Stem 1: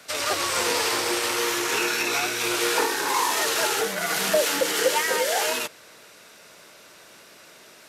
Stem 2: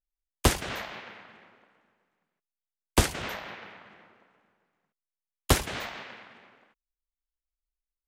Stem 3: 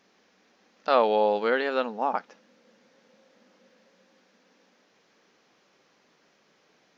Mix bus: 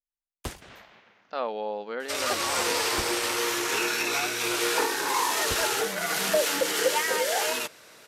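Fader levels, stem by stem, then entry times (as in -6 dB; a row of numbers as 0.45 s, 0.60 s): -2.5 dB, -13.5 dB, -9.5 dB; 2.00 s, 0.00 s, 0.45 s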